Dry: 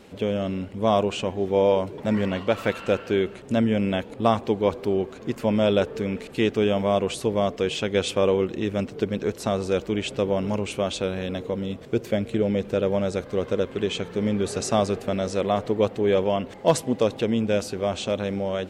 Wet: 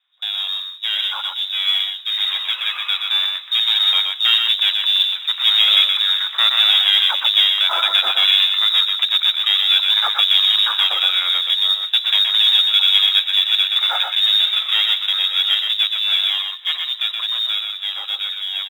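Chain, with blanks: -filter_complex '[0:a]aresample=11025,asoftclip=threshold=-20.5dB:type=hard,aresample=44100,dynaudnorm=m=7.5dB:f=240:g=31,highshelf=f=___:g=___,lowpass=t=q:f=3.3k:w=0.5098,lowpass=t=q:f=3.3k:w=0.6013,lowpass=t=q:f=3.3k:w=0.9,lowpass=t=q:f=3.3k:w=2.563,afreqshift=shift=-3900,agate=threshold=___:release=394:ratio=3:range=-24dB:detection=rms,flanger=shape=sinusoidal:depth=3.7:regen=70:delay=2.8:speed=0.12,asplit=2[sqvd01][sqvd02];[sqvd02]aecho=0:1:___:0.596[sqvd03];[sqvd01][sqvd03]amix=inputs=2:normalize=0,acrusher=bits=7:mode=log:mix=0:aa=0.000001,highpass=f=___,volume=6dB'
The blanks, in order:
2.4k, 8.5, -23dB, 123, 1.1k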